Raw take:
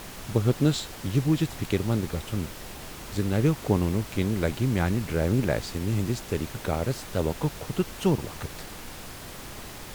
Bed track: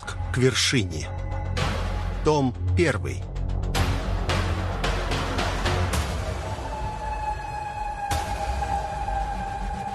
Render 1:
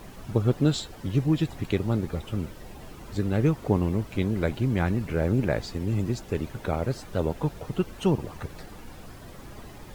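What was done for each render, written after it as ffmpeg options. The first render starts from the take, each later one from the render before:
ffmpeg -i in.wav -af "afftdn=noise_reduction=11:noise_floor=-41" out.wav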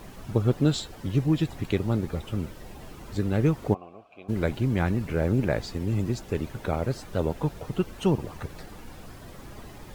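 ffmpeg -i in.wav -filter_complex "[0:a]asplit=3[link_01][link_02][link_03];[link_01]afade=type=out:start_time=3.73:duration=0.02[link_04];[link_02]asplit=3[link_05][link_06][link_07];[link_05]bandpass=frequency=730:width_type=q:width=8,volume=0dB[link_08];[link_06]bandpass=frequency=1090:width_type=q:width=8,volume=-6dB[link_09];[link_07]bandpass=frequency=2440:width_type=q:width=8,volume=-9dB[link_10];[link_08][link_09][link_10]amix=inputs=3:normalize=0,afade=type=in:start_time=3.73:duration=0.02,afade=type=out:start_time=4.28:duration=0.02[link_11];[link_03]afade=type=in:start_time=4.28:duration=0.02[link_12];[link_04][link_11][link_12]amix=inputs=3:normalize=0" out.wav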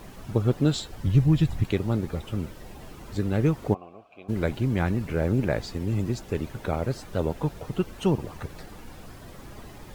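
ffmpeg -i in.wav -filter_complex "[0:a]asplit=3[link_01][link_02][link_03];[link_01]afade=type=out:start_time=0.92:duration=0.02[link_04];[link_02]asubboost=boost=7.5:cutoff=160,afade=type=in:start_time=0.92:duration=0.02,afade=type=out:start_time=1.63:duration=0.02[link_05];[link_03]afade=type=in:start_time=1.63:duration=0.02[link_06];[link_04][link_05][link_06]amix=inputs=3:normalize=0" out.wav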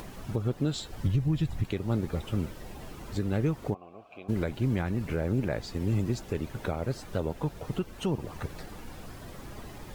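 ffmpeg -i in.wav -af "alimiter=limit=-18.5dB:level=0:latency=1:release=311,acompressor=mode=upward:threshold=-41dB:ratio=2.5" out.wav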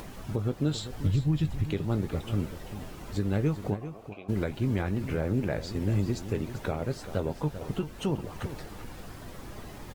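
ffmpeg -i in.wav -filter_complex "[0:a]asplit=2[link_01][link_02];[link_02]adelay=20,volume=-12.5dB[link_03];[link_01][link_03]amix=inputs=2:normalize=0,aecho=1:1:392:0.251" out.wav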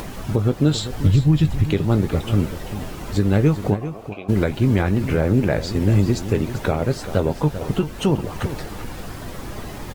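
ffmpeg -i in.wav -af "volume=10.5dB" out.wav

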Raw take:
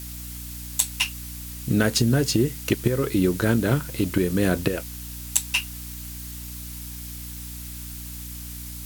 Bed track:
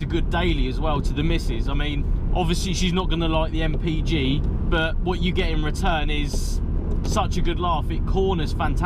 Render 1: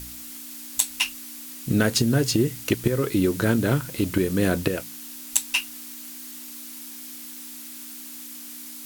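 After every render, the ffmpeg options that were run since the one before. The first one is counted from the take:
ffmpeg -i in.wav -af "bandreject=frequency=60:width_type=h:width=4,bandreject=frequency=120:width_type=h:width=4,bandreject=frequency=180:width_type=h:width=4" out.wav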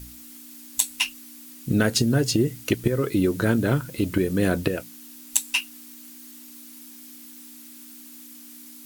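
ffmpeg -i in.wav -af "afftdn=noise_reduction=7:noise_floor=-39" out.wav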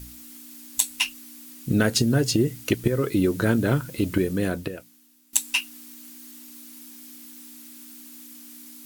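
ffmpeg -i in.wav -filter_complex "[0:a]asplit=2[link_01][link_02];[link_01]atrim=end=5.33,asetpts=PTS-STARTPTS,afade=type=out:start_time=4.2:duration=1.13:curve=qua:silence=0.149624[link_03];[link_02]atrim=start=5.33,asetpts=PTS-STARTPTS,afade=type=in:duration=0.004:curve=hsin:silence=0.149624[link_04];[link_03][link_04]concat=n=2:v=0:a=1" out.wav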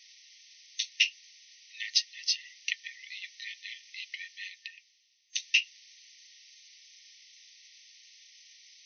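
ffmpeg -i in.wav -af "afftfilt=real='re*between(b*sr/4096,1800,6300)':imag='im*between(b*sr/4096,1800,6300)':win_size=4096:overlap=0.75" out.wav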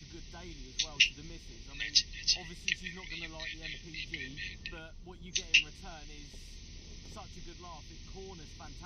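ffmpeg -i in.wav -i bed.wav -filter_complex "[1:a]volume=-26.5dB[link_01];[0:a][link_01]amix=inputs=2:normalize=0" out.wav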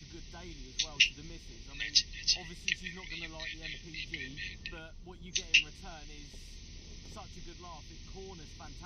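ffmpeg -i in.wav -af anull out.wav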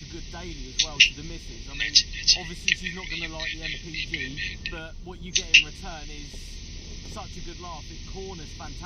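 ffmpeg -i in.wav -af "volume=10dB,alimiter=limit=-2dB:level=0:latency=1" out.wav

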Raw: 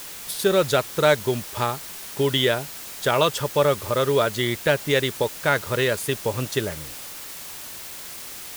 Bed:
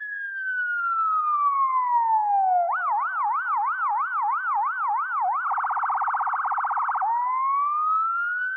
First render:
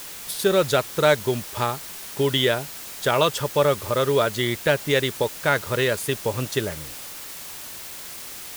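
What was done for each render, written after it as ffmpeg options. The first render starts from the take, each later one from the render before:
ffmpeg -i in.wav -af anull out.wav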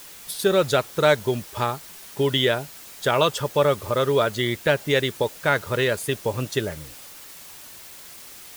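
ffmpeg -i in.wav -af "afftdn=noise_reduction=6:noise_floor=-37" out.wav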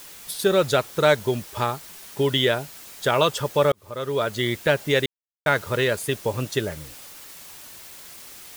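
ffmpeg -i in.wav -filter_complex "[0:a]asplit=4[link_01][link_02][link_03][link_04];[link_01]atrim=end=3.72,asetpts=PTS-STARTPTS,afade=type=out:start_time=3.716:duration=0.004:curve=hsin[link_05];[link_02]atrim=start=3.72:end=5.06,asetpts=PTS-STARTPTS,afade=type=in:duration=0.73,afade=type=out:start_time=1.336:duration=0.004:curve=hsin[link_06];[link_03]atrim=start=5.06:end=5.46,asetpts=PTS-STARTPTS,volume=0[link_07];[link_04]atrim=start=5.46,asetpts=PTS-STARTPTS,afade=type=in:duration=0.004:curve=hsin[link_08];[link_05][link_06][link_07][link_08]concat=n=4:v=0:a=1" out.wav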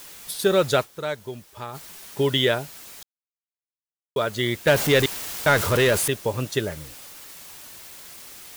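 ffmpeg -i in.wav -filter_complex "[0:a]asettb=1/sr,asplit=3[link_01][link_02][link_03];[link_01]atrim=end=4.674[link_04];[link_02]atrim=start=4.67:end=6.08,asetpts=PTS-STARTPTS,afade=type=in:duration=0.004:curve=qsin,afade=type=out:start_time=1.406:duration=0.004:curve=qsin,aeval=exprs='val(0)+0.5*0.0891*sgn(val(0))':channel_layout=same[link_05];[link_03]atrim=start=6.076[link_06];[link_04][link_05]acrossfade=duration=0.004:curve1=hsin:curve2=qsin[link_07];[link_07][link_06]acrossfade=duration=0.004:curve1=qsin:curve2=hsin,asplit=5[link_08][link_09][link_10][link_11][link_12];[link_08]atrim=end=1.03,asetpts=PTS-STARTPTS,afade=type=out:start_time=0.83:duration=0.2:curve=exp:silence=0.281838[link_13];[link_09]atrim=start=1.03:end=1.56,asetpts=PTS-STARTPTS,volume=-11dB[link_14];[link_10]atrim=start=1.56:end=3.03,asetpts=PTS-STARTPTS,afade=type=in:duration=0.2:curve=exp:silence=0.281838,afade=type=out:start_time=1.466:duration=0.004:curve=hsin[link_15];[link_11]atrim=start=3.03:end=4.16,asetpts=PTS-STARTPTS,volume=0[link_16];[link_12]atrim=start=4.16,asetpts=PTS-STARTPTS,afade=type=in:duration=0.004:curve=hsin[link_17];[link_13][link_14][link_15][link_16][link_17]concat=n=5:v=0:a=1" out.wav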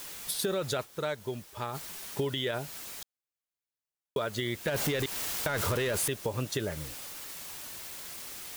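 ffmpeg -i in.wav -af "alimiter=limit=-14.5dB:level=0:latency=1:release=28,acompressor=threshold=-29dB:ratio=4" out.wav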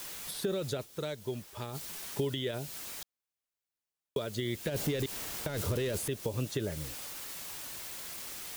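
ffmpeg -i in.wav -filter_complex "[0:a]acrossover=split=560|2500[link_01][link_02][link_03];[link_02]acompressor=threshold=-47dB:ratio=6[link_04];[link_03]alimiter=level_in=6.5dB:limit=-24dB:level=0:latency=1:release=169,volume=-6.5dB[link_05];[link_01][link_04][link_05]amix=inputs=3:normalize=0" out.wav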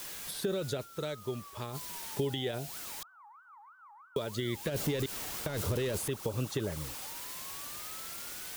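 ffmpeg -i in.wav -i bed.wav -filter_complex "[1:a]volume=-31dB[link_01];[0:a][link_01]amix=inputs=2:normalize=0" out.wav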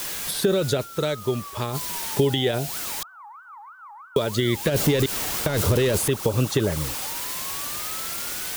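ffmpeg -i in.wav -af "volume=12dB" out.wav

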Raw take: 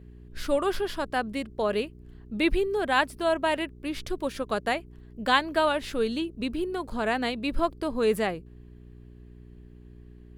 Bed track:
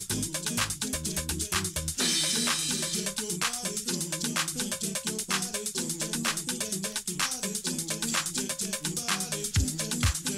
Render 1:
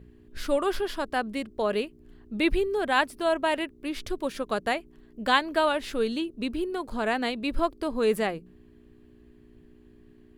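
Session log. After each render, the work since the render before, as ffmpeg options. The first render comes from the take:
ffmpeg -i in.wav -af "bandreject=frequency=60:width_type=h:width=4,bandreject=frequency=120:width_type=h:width=4,bandreject=frequency=180:width_type=h:width=4" out.wav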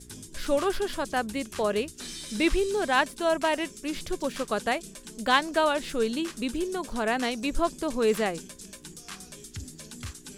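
ffmpeg -i in.wav -i bed.wav -filter_complex "[1:a]volume=-13dB[link_01];[0:a][link_01]amix=inputs=2:normalize=0" out.wav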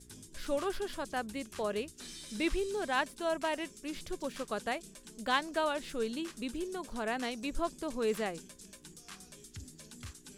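ffmpeg -i in.wav -af "volume=-8dB" out.wav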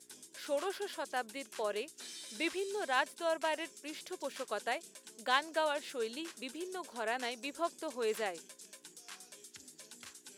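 ffmpeg -i in.wav -af "highpass=420,bandreject=frequency=1200:width=13" out.wav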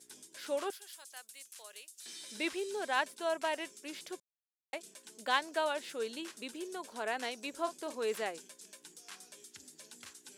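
ffmpeg -i in.wav -filter_complex "[0:a]asettb=1/sr,asplit=3[link_01][link_02][link_03];[link_01]atrim=end=0.704[link_04];[link_02]atrim=start=0.7:end=2.06,asetpts=PTS-STARTPTS,afade=type=in:duration=0.004:curve=qsin,afade=type=out:start_time=1.356:duration=0.004:curve=qsin,aderivative[link_05];[link_03]atrim=start=2.056[link_06];[link_04][link_05]acrossfade=duration=0.004:curve1=hsin:curve2=qsin[link_07];[link_07][link_06]acrossfade=duration=0.004:curve1=qsin:curve2=hsin,asettb=1/sr,asplit=3[link_08][link_09][link_10];[link_08]atrim=end=7.504[link_11];[link_09]atrim=start=7.5:end=7.95,asetpts=PTS-STARTPTS,afade=type=in:duration=0.004:curve=qsin,afade=type=out:start_time=0.446:duration=0.004:curve=qsin,asplit=2[link_12][link_13];[link_13]adelay=39,volume=-10.5dB[link_14];[link_12][link_14]amix=inputs=2:normalize=0,atrim=end_sample=19845[link_15];[link_10]atrim=start=7.946[link_16];[link_11][link_15]acrossfade=duration=0.004:curve1=hsin:curve2=qsin[link_17];[link_17][link_16]acrossfade=duration=0.004:curve1=qsin:curve2=hsin,asplit=3[link_18][link_19][link_20];[link_18]atrim=end=4.2,asetpts=PTS-STARTPTS,afade=type=out:start_time=4.196:duration=0.004:curve=hsin[link_21];[link_19]atrim=start=4.2:end=4.73,asetpts=PTS-STARTPTS,volume=0[link_22];[link_20]atrim=start=4.73,asetpts=PTS-STARTPTS,afade=type=in:duration=0.004:curve=hsin[link_23];[link_21][link_22][link_23]concat=n=3:v=0:a=1" out.wav

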